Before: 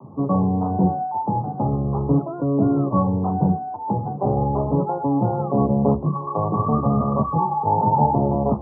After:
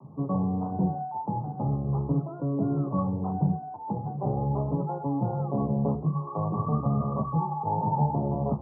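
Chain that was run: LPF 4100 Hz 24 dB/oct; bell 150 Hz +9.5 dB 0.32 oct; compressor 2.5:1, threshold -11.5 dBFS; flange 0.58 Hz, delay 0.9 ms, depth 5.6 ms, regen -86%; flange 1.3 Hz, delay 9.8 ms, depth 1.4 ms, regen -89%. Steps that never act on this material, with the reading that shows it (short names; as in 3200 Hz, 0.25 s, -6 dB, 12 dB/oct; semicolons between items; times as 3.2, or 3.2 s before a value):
LPF 4100 Hz: input band ends at 1200 Hz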